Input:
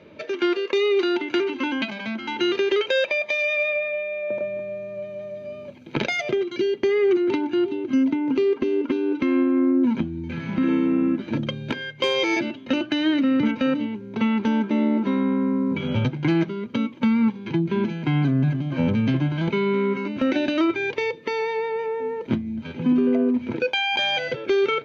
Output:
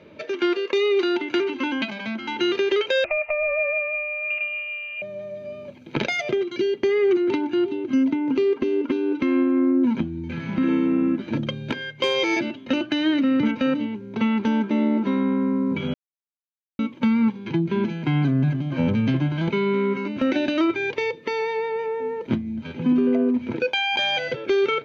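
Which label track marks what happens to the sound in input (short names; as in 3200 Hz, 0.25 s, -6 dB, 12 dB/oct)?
3.040000	5.020000	inverted band carrier 3000 Hz
15.940000	16.790000	mute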